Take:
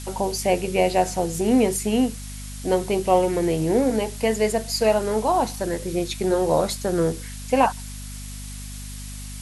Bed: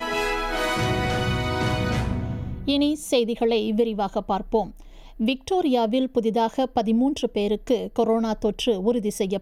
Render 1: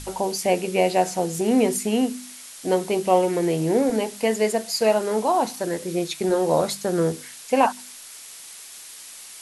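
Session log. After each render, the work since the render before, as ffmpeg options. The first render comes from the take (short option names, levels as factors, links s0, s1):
-af "bandreject=f=50:t=h:w=4,bandreject=f=100:t=h:w=4,bandreject=f=150:t=h:w=4,bandreject=f=200:t=h:w=4,bandreject=f=250:t=h:w=4"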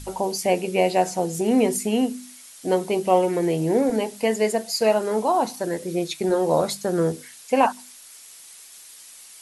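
-af "afftdn=nr=6:nf=-42"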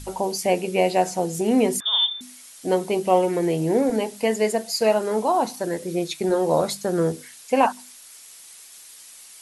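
-filter_complex "[0:a]asettb=1/sr,asplit=3[s0][s1][s2];[s0]atrim=end=1.804[s3];[s1]atrim=start=1.8:end=2.21,asetpts=PTS-STARTPTS,afade=t=in:d=0.004:c=qsin,afade=t=out:st=0.406:d=0.004:c=qsin,lowpass=f=3200:t=q:w=0.5098,lowpass=f=3200:t=q:w=0.6013,lowpass=f=3200:t=q:w=0.9,lowpass=f=3200:t=q:w=2.563,afreqshift=-3800[s4];[s2]atrim=start=2.206[s5];[s3][s4]acrossfade=d=0.004:c1=hsin:c2=qsin[s6];[s6][s5]acrossfade=d=0.004:c1=qsin:c2=hsin"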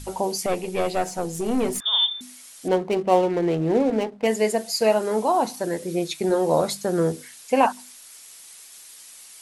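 -filter_complex "[0:a]asettb=1/sr,asplit=3[s0][s1][s2];[s0]atrim=end=0.464[s3];[s1]atrim=start=0.46:end=1.84,asetpts=PTS-STARTPTS,afade=t=in:d=0.004:c=qsin,afade=t=out:st=1.376:d=0.004:c=qsin,aeval=exprs='(tanh(6.31*val(0)+0.55)-tanh(0.55))/6.31':c=same[s4];[s2]atrim=start=1.836[s5];[s3][s4]acrossfade=d=0.004:c1=hsin:c2=qsin[s6];[s6][s5]acrossfade=d=0.004:c1=qsin:c2=hsin,asettb=1/sr,asplit=3[s7][s8][s9];[s7]atrim=end=2.684[s10];[s8]atrim=start=2.68:end=4.27,asetpts=PTS-STARTPTS,afade=t=in:d=0.004:c=qsin,afade=t=out:st=1.586:d=0.004:c=qsin,adynamicsmooth=sensitivity=4.5:basefreq=620[s11];[s9]atrim=start=4.266[s12];[s10][s11]acrossfade=d=0.004:c1=hsin:c2=qsin[s13];[s13][s12]acrossfade=d=0.004:c1=qsin:c2=hsin"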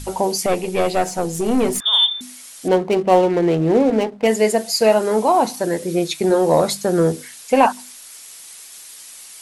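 -af "acontrast=45"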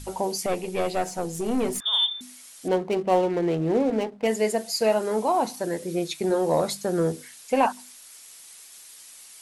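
-af "volume=0.422"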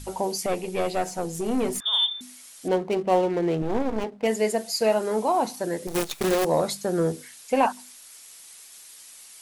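-filter_complex "[0:a]asettb=1/sr,asplit=3[s0][s1][s2];[s0]atrim=end=3.624[s3];[s1]atrim=start=3.62:end=4.04,asetpts=PTS-STARTPTS,afade=t=in:d=0.004:c=qsin,afade=t=out:st=0.416:d=0.004:c=qsin,aeval=exprs='max(val(0),0)':c=same[s4];[s2]atrim=start=4.036[s5];[s3][s4]acrossfade=d=0.004:c1=hsin:c2=qsin[s6];[s6][s5]acrossfade=d=0.004:c1=qsin:c2=hsin,asettb=1/sr,asplit=3[s7][s8][s9];[s7]atrim=end=5.874[s10];[s8]atrim=start=5.87:end=6.45,asetpts=PTS-STARTPTS,afade=t=in:d=0.004:c=qsin,afade=t=out:st=0.576:d=0.004:c=qsin,acrusher=bits=5:dc=4:mix=0:aa=0.000001[s11];[s9]atrim=start=6.446[s12];[s10][s11]acrossfade=d=0.004:c1=hsin:c2=qsin[s13];[s13][s12]acrossfade=d=0.004:c1=qsin:c2=hsin"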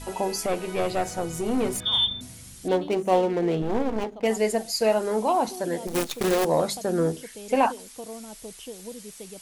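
-filter_complex "[1:a]volume=0.126[s0];[0:a][s0]amix=inputs=2:normalize=0"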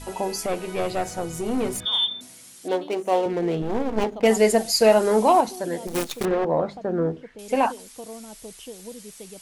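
-filter_complex "[0:a]asettb=1/sr,asplit=3[s0][s1][s2];[s0]atrim=end=1.864[s3];[s1]atrim=start=1.86:end=3.26,asetpts=PTS-STARTPTS,afade=t=in:d=0.004:c=qsin,afade=t=out:st=1.396:d=0.004:c=qsin,highpass=310[s4];[s2]atrim=start=3.256[s5];[s3][s4]acrossfade=d=0.004:c1=hsin:c2=qsin[s6];[s6][s5]acrossfade=d=0.004:c1=qsin:c2=hsin,asettb=1/sr,asplit=3[s7][s8][s9];[s7]atrim=end=3.974[s10];[s8]atrim=start=3.97:end=5.41,asetpts=PTS-STARTPTS,afade=t=in:d=0.004:c=qsin,afade=t=out:st=1.436:d=0.004:c=qsin,acontrast=59[s11];[s9]atrim=start=5.406[s12];[s10][s11]acrossfade=d=0.004:c1=hsin:c2=qsin[s13];[s13][s12]acrossfade=d=0.004:c1=qsin:c2=hsin,asettb=1/sr,asplit=3[s14][s15][s16];[s14]atrim=end=6.254[s17];[s15]atrim=start=6.25:end=7.39,asetpts=PTS-STARTPTS,afade=t=in:d=0.004:c=qsin,afade=t=out:st=1.136:d=0.004:c=qsin,lowpass=1700[s18];[s16]atrim=start=7.386[s19];[s17][s18]acrossfade=d=0.004:c1=hsin:c2=qsin[s20];[s20][s19]acrossfade=d=0.004:c1=qsin:c2=hsin"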